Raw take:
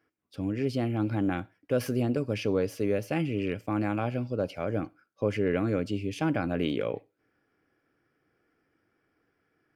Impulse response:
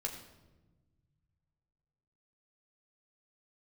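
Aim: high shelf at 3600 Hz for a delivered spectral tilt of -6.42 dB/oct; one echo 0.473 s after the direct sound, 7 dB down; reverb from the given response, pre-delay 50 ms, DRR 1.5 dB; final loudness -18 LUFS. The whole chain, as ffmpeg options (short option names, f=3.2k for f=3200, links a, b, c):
-filter_complex "[0:a]highshelf=f=3.6k:g=-6,aecho=1:1:473:0.447,asplit=2[a][b];[1:a]atrim=start_sample=2205,adelay=50[c];[b][c]afir=irnorm=-1:irlink=0,volume=-2dB[d];[a][d]amix=inputs=2:normalize=0,volume=9dB"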